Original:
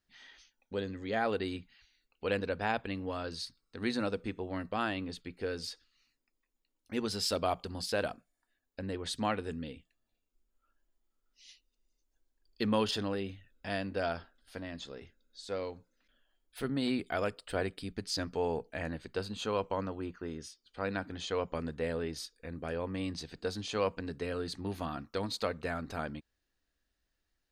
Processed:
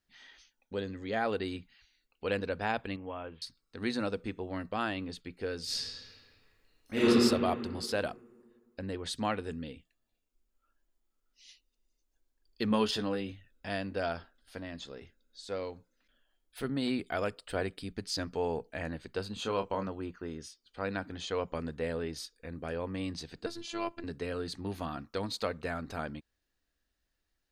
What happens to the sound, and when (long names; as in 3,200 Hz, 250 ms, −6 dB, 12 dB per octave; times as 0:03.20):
0:02.96–0:03.42: Chebyshev low-pass with heavy ripple 3,300 Hz, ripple 6 dB
0:05.64–0:07.07: thrown reverb, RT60 2 s, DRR −12 dB
0:12.69–0:13.32: double-tracking delay 14 ms −6.5 dB
0:19.34–0:19.88: double-tracking delay 26 ms −8 dB
0:23.46–0:24.04: phases set to zero 339 Hz